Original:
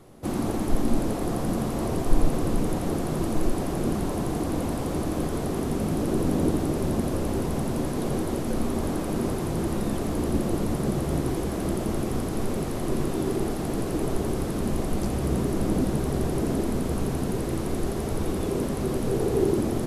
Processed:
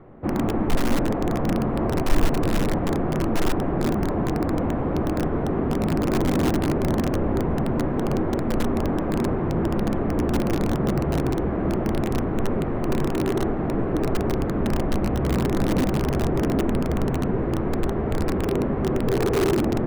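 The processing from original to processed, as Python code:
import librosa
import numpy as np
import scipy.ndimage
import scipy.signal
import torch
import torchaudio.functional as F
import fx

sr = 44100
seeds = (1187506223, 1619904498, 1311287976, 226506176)

p1 = scipy.signal.sosfilt(scipy.signal.butter(4, 2000.0, 'lowpass', fs=sr, output='sos'), x)
p2 = (np.mod(10.0 ** (18.0 / 20.0) * p1 + 1.0, 2.0) - 1.0) / 10.0 ** (18.0 / 20.0)
y = p1 + (p2 * librosa.db_to_amplitude(-4.5))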